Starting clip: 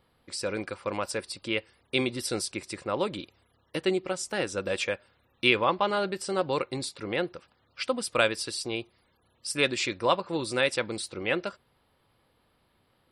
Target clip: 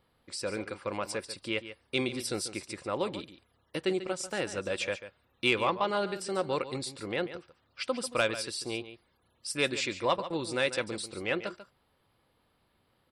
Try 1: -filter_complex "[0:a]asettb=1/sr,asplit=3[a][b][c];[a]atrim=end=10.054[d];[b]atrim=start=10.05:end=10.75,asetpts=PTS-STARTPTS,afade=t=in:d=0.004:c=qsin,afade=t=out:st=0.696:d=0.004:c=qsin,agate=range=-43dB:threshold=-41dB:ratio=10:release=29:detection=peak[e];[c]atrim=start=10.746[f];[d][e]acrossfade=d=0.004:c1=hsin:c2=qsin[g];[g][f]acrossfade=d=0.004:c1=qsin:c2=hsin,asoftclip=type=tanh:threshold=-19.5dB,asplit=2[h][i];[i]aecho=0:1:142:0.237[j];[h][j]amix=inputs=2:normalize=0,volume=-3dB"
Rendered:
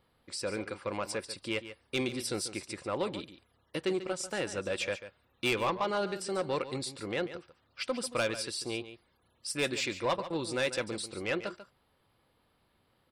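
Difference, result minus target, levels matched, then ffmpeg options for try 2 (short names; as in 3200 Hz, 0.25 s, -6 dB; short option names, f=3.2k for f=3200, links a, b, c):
soft clip: distortion +11 dB
-filter_complex "[0:a]asettb=1/sr,asplit=3[a][b][c];[a]atrim=end=10.054[d];[b]atrim=start=10.05:end=10.75,asetpts=PTS-STARTPTS,afade=t=in:d=0.004:c=qsin,afade=t=out:st=0.696:d=0.004:c=qsin,agate=range=-43dB:threshold=-41dB:ratio=10:release=29:detection=peak[e];[c]atrim=start=10.746[f];[d][e]acrossfade=d=0.004:c1=hsin:c2=qsin[g];[g][f]acrossfade=d=0.004:c1=qsin:c2=hsin,asoftclip=type=tanh:threshold=-10dB,asplit=2[h][i];[i]aecho=0:1:142:0.237[j];[h][j]amix=inputs=2:normalize=0,volume=-3dB"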